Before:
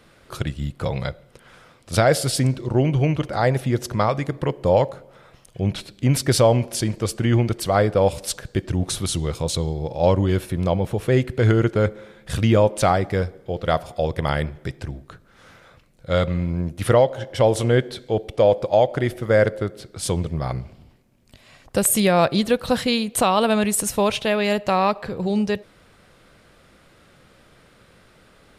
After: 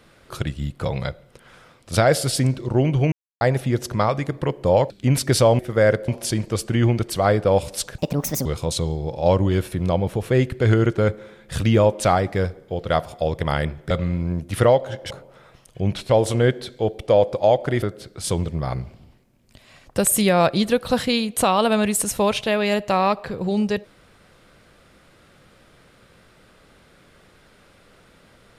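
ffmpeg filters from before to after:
-filter_complex "[0:a]asplit=12[s0][s1][s2][s3][s4][s5][s6][s7][s8][s9][s10][s11];[s0]atrim=end=3.12,asetpts=PTS-STARTPTS,afade=t=out:st=3.116:d=0.004:c=hsin[s12];[s1]atrim=start=3.12:end=3.41,asetpts=PTS-STARTPTS,volume=0[s13];[s2]atrim=start=3.41:end=4.902,asetpts=PTS-STARTPTS,afade=t=in:d=0.004:c=hsin[s14];[s3]atrim=start=5.888:end=6.582[s15];[s4]atrim=start=19.118:end=19.612[s16];[s5]atrim=start=6.578:end=8.484[s17];[s6]atrim=start=8.48:end=9.23,asetpts=PTS-STARTPTS,asetrate=69678,aresample=44100[s18];[s7]atrim=start=9.226:end=14.682[s19];[s8]atrim=start=16.188:end=17.392[s20];[s9]atrim=start=4.898:end=5.892[s21];[s10]atrim=start=17.388:end=19.122[s22];[s11]atrim=start=19.608[s23];[s12][s13][s14]concat=n=3:v=0:a=1[s24];[s24][s15]acrossfade=d=0.004:c1=hsin:c2=hsin[s25];[s25][s16]acrossfade=d=0.004:c1=hsin:c2=hsin[s26];[s26][s17]acrossfade=d=0.004:c1=hsin:c2=hsin[s27];[s27][s18]acrossfade=d=0.004:c1=hsin:c2=hsin[s28];[s28][s19]acrossfade=d=0.004:c1=hsin:c2=hsin[s29];[s29][s20]acrossfade=d=0.004:c1=hsin:c2=hsin[s30];[s30][s21]acrossfade=d=0.004:c1=hsin:c2=hsin[s31];[s31][s22]acrossfade=d=0.004:c1=hsin:c2=hsin[s32];[s32][s23]acrossfade=d=0.004:c1=hsin:c2=hsin"

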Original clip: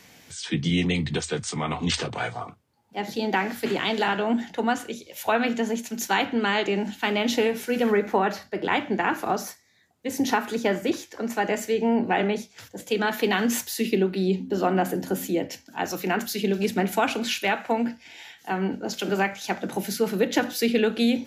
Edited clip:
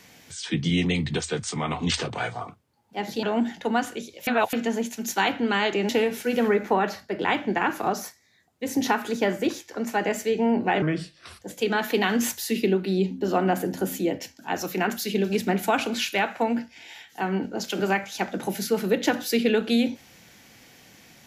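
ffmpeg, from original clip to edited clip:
-filter_complex "[0:a]asplit=7[s0][s1][s2][s3][s4][s5][s6];[s0]atrim=end=3.232[s7];[s1]atrim=start=4.158:end=5.202[s8];[s2]atrim=start=5.198:end=5.462,asetpts=PTS-STARTPTS,areverse[s9];[s3]atrim=start=5.458:end=6.822[s10];[s4]atrim=start=7.318:end=12.254[s11];[s5]atrim=start=12.25:end=12.71,asetpts=PTS-STARTPTS,asetrate=33957,aresample=44100,atrim=end_sample=26345,asetpts=PTS-STARTPTS[s12];[s6]atrim=start=12.706[s13];[s7][s8]acrossfade=d=0.004:c1=hsin:c2=hsin[s14];[s14][s9]acrossfade=d=0.004:c1=hsin:c2=hsin[s15];[s15][s10]acrossfade=d=0.004:c1=hsin:c2=hsin[s16];[s16][s11]acrossfade=d=0.004:c1=hsin:c2=hsin[s17];[s17][s12]acrossfade=d=0.004:c1=hsin:c2=hsin[s18];[s18][s13]acrossfade=d=0.004:c1=hsin:c2=hsin"

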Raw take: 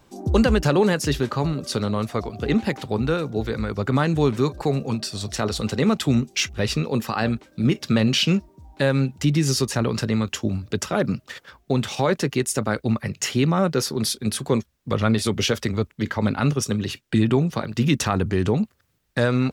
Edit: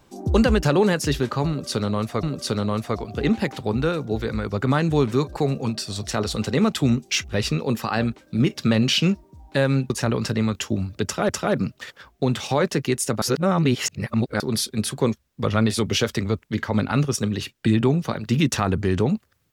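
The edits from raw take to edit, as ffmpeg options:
-filter_complex "[0:a]asplit=6[s0][s1][s2][s3][s4][s5];[s0]atrim=end=2.232[s6];[s1]atrim=start=1.478:end=9.152[s7];[s2]atrim=start=9.628:end=11.022[s8];[s3]atrim=start=10.768:end=12.702[s9];[s4]atrim=start=12.698:end=13.882,asetpts=PTS-STARTPTS,areverse[s10];[s5]atrim=start=13.878[s11];[s6][s7]acrossfade=d=0.004:c1=hsin:c2=hsin[s12];[s12][s8]acrossfade=d=0.004:c1=hsin:c2=hsin[s13];[s13][s9]acrossfade=d=0.004:c1=hsin:c2=hsin[s14];[s14][s10]acrossfade=d=0.004:c1=hsin:c2=hsin[s15];[s15][s11]acrossfade=d=0.004:c1=hsin:c2=hsin"

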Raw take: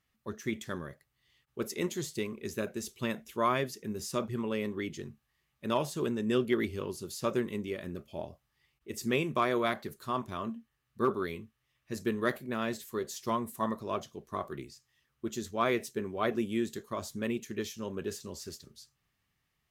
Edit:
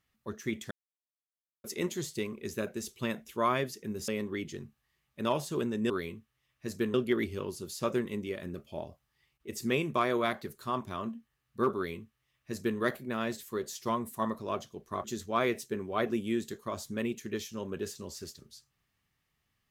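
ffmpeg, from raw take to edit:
-filter_complex "[0:a]asplit=7[s0][s1][s2][s3][s4][s5][s6];[s0]atrim=end=0.71,asetpts=PTS-STARTPTS,afade=t=out:st=0.706:d=0.004:c=hsin[s7];[s1]atrim=start=0.71:end=1.64,asetpts=PTS-STARTPTS,volume=0[s8];[s2]atrim=start=1.64:end=4.082,asetpts=PTS-STARTPTS,afade=t=in:d=0.004:c=hsin[s9];[s3]atrim=start=4.528:end=6.352[s10];[s4]atrim=start=11.158:end=12.202[s11];[s5]atrim=start=6.348:end=14.452[s12];[s6]atrim=start=15.288[s13];[s7][s8][s9]concat=n=3:v=0:a=1[s14];[s14][s10]acrossfade=d=0.004:c1=hsin:c2=hsin[s15];[s15][s11]acrossfade=d=0.004:c1=hsin:c2=hsin[s16];[s16][s12]acrossfade=d=0.004:c1=hsin:c2=hsin[s17];[s17][s13]acrossfade=d=0.004:c1=hsin:c2=hsin"

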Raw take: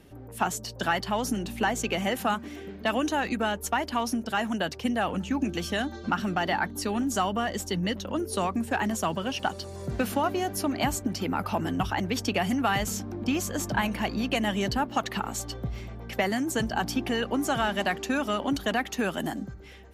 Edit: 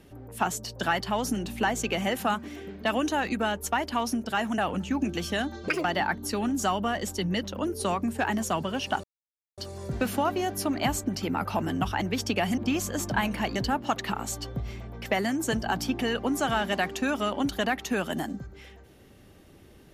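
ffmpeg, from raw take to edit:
-filter_complex "[0:a]asplit=7[s0][s1][s2][s3][s4][s5][s6];[s0]atrim=end=4.582[s7];[s1]atrim=start=4.978:end=6.084[s8];[s2]atrim=start=6.08:end=6.37,asetpts=PTS-STARTPTS,asetrate=77175,aresample=44100[s9];[s3]atrim=start=6.366:end=9.56,asetpts=PTS-STARTPTS,afade=t=out:st=3.19:d=0.004:c=hsin,apad=pad_dur=0.54[s10];[s4]atrim=start=9.56:end=12.562,asetpts=PTS-STARTPTS,afade=t=in:d=0.004:c=hsin[s11];[s5]atrim=start=13.178:end=14.162[s12];[s6]atrim=start=14.628[s13];[s7][s8]acrossfade=d=0.004:c1=hsin:c2=hsin[s14];[s14][s9]acrossfade=d=0.004:c1=hsin:c2=hsin[s15];[s10][s11]concat=n=2:v=0:a=1[s16];[s15][s16]acrossfade=d=0.004:c1=hsin:c2=hsin[s17];[s17][s12]acrossfade=d=0.004:c1=hsin:c2=hsin[s18];[s18][s13]acrossfade=d=0.004:c1=hsin:c2=hsin"

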